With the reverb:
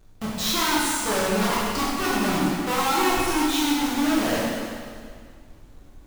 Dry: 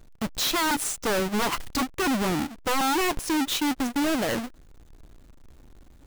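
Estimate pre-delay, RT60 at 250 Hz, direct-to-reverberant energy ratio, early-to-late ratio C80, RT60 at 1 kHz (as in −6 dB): 5 ms, 2.0 s, −7.5 dB, 0.0 dB, 2.0 s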